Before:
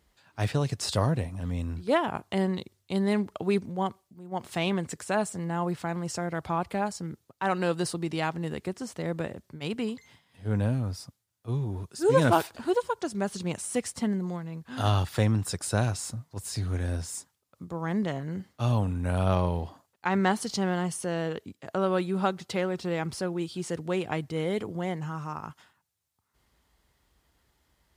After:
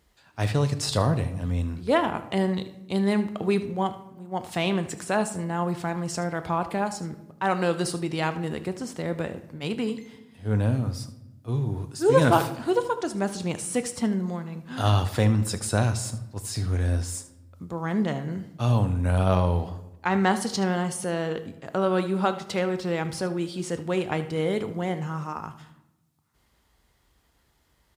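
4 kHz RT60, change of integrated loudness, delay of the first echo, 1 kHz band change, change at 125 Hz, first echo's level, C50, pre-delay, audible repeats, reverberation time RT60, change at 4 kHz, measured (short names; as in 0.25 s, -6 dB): 0.65 s, +3.0 dB, 76 ms, +3.0 dB, +3.5 dB, -16.0 dB, 12.0 dB, 4 ms, 1, 1.0 s, +3.0 dB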